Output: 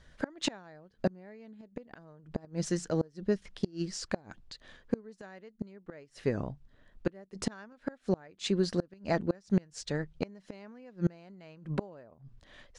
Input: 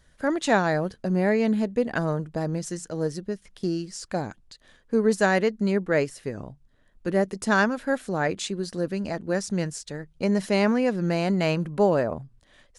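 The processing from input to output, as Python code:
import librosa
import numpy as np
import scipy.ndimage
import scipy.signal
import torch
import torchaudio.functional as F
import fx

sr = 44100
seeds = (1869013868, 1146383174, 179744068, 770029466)

y = fx.gate_flip(x, sr, shuts_db=-18.0, range_db=-30)
y = scipy.signal.sosfilt(scipy.signal.butter(2, 5600.0, 'lowpass', fs=sr, output='sos'), y)
y = y * 10.0 ** (2.0 / 20.0)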